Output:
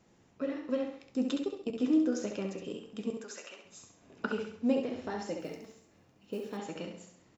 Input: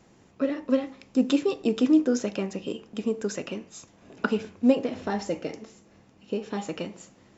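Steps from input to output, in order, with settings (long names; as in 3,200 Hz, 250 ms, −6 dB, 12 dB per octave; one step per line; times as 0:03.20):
0:01.32–0:01.80: output level in coarse steps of 22 dB
0:03.10–0:03.65: high-pass filter 780 Hz 12 dB per octave
repeating echo 67 ms, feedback 42%, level −5.5 dB
0:05.40–0:06.57: noise that follows the level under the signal 27 dB
flanger 1.3 Hz, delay 9 ms, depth 4.7 ms, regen −67%
level −4 dB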